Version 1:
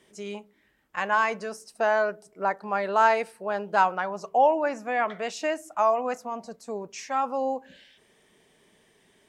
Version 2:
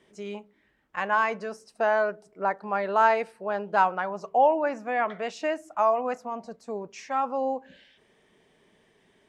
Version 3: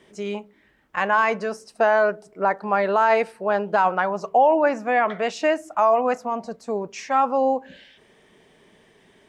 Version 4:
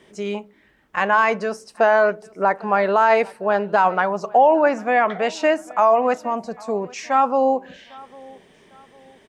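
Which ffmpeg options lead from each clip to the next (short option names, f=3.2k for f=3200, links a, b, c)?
-af "aemphasis=mode=reproduction:type=50kf"
-af "alimiter=limit=-16.5dB:level=0:latency=1:release=38,volume=7.5dB"
-af "aecho=1:1:801|1602:0.0668|0.0247,volume=2.5dB"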